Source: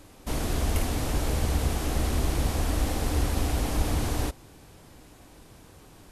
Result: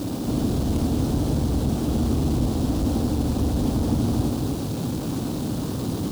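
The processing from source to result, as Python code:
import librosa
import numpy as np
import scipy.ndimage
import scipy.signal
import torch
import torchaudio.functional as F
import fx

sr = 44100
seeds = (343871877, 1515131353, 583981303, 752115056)

p1 = fx.delta_mod(x, sr, bps=64000, step_db=-28.0)
p2 = scipy.signal.sosfilt(scipy.signal.butter(2, 54.0, 'highpass', fs=sr, output='sos'), p1)
p3 = fx.high_shelf(p2, sr, hz=2300.0, db=-10.0)
p4 = fx.quant_dither(p3, sr, seeds[0], bits=6, dither='triangular')
p5 = p3 + F.gain(torch.from_numpy(p4), -9.5).numpy()
p6 = 10.0 ** (-22.0 / 20.0) * np.tanh(p5 / 10.0 ** (-22.0 / 20.0))
p7 = fx.graphic_eq_10(p6, sr, hz=(125, 250, 2000, 4000), db=(7, 11, -11, 5))
y = p7 + fx.echo_single(p7, sr, ms=240, db=-6.0, dry=0)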